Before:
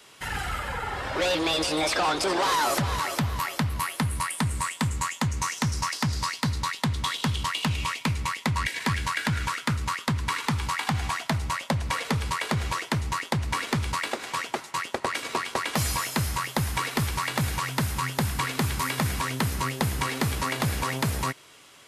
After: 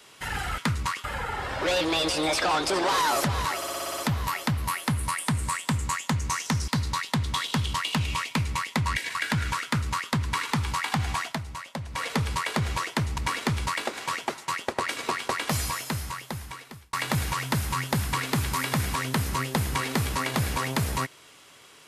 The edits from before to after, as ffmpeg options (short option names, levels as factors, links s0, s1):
-filter_complex "[0:a]asplit=16[s0][s1][s2][s3][s4][s5][s6][s7][s8][s9][s10][s11][s12][s13][s14][s15];[s0]atrim=end=0.582[s16];[s1]atrim=start=9.598:end=10.062[s17];[s2]atrim=start=0.578:end=3.162[s18];[s3]atrim=start=3.098:end=3.162[s19];[s4]atrim=start=3.098:end=3.162[s20];[s5]atrim=start=3.098:end=3.162[s21];[s6]atrim=start=3.098:end=3.162[s22];[s7]atrim=start=3.098:end=3.162[s23];[s8]atrim=start=3.098:end=3.162[s24];[s9]atrim=start=3.098:end=5.802[s25];[s10]atrim=start=6.378:end=8.852[s26];[s11]atrim=start=9.098:end=11.35,asetpts=PTS-STARTPTS,afade=t=out:st=2.122:d=0.13:silence=0.375837[s27];[s12]atrim=start=11.35:end=11.87,asetpts=PTS-STARTPTS,volume=0.376[s28];[s13]atrim=start=11.87:end=13.132,asetpts=PTS-STARTPTS,afade=t=in:d=0.13:silence=0.375837[s29];[s14]atrim=start=13.438:end=17.19,asetpts=PTS-STARTPTS,afade=t=out:st=2.152:d=1.6[s30];[s15]atrim=start=17.19,asetpts=PTS-STARTPTS,afade=t=in:d=0.004:c=hsin[s31];[s16][s17]acrossfade=d=0.004:c1=hsin:c2=hsin[s32];[s32][s18]acrossfade=d=0.004:c1=hsin:c2=hsin[s33];[s33][s19]acrossfade=d=0.004:c1=hsin:c2=hsin[s34];[s34][s20]acrossfade=d=0.004:c1=hsin:c2=hsin[s35];[s35][s21]acrossfade=d=0.004:c1=hsin:c2=hsin[s36];[s36][s22]acrossfade=d=0.004:c1=hsin:c2=hsin[s37];[s37][s23]acrossfade=d=0.004:c1=hsin:c2=hsin[s38];[s38][s24]acrossfade=d=0.004:c1=hsin:c2=hsin[s39];[s39][s25]acrossfade=d=0.004:c1=hsin:c2=hsin[s40];[s40][s26]acrossfade=d=0.004:c1=hsin:c2=hsin[s41];[s27][s28][s29]concat=n=3:v=0:a=1[s42];[s41][s42]acrossfade=d=0.004:c1=hsin:c2=hsin[s43];[s30][s31]concat=n=2:v=0:a=1[s44];[s43][s44]acrossfade=d=0.004:c1=hsin:c2=hsin"